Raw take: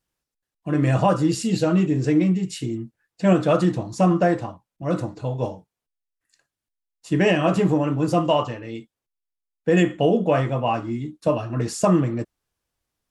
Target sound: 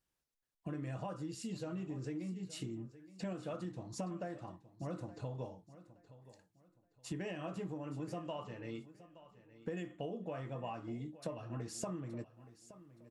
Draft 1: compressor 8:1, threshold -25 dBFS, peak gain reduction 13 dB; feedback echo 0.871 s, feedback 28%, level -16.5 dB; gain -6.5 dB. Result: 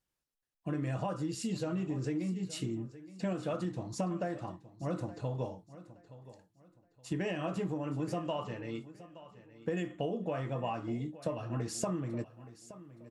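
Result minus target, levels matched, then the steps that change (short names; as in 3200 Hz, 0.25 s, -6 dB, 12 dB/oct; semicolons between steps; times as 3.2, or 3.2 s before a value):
compressor: peak gain reduction -7 dB
change: compressor 8:1, threshold -33 dBFS, peak gain reduction 20 dB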